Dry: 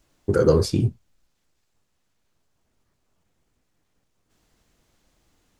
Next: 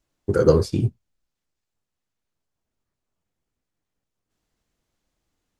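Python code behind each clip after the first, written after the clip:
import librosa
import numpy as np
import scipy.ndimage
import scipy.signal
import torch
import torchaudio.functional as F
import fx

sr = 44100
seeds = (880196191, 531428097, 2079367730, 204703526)

y = fx.upward_expand(x, sr, threshold_db=-40.0, expansion=1.5)
y = F.gain(torch.from_numpy(y), 2.5).numpy()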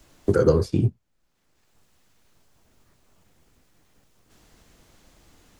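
y = fx.band_squash(x, sr, depth_pct=70)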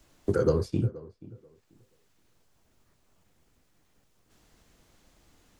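y = fx.echo_tape(x, sr, ms=482, feedback_pct=23, wet_db=-17, lp_hz=1100.0, drive_db=7.0, wow_cents=39)
y = F.gain(torch.from_numpy(y), -6.0).numpy()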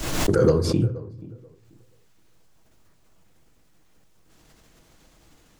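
y = np.clip(x, -10.0 ** (-13.5 / 20.0), 10.0 ** (-13.5 / 20.0))
y = fx.room_shoebox(y, sr, seeds[0], volume_m3=3100.0, walls='furnished', distance_m=0.61)
y = fx.pre_swell(y, sr, db_per_s=39.0)
y = F.gain(torch.from_numpy(y), 4.5).numpy()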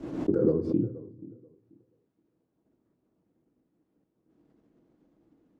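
y = fx.bandpass_q(x, sr, hz=290.0, q=2.1)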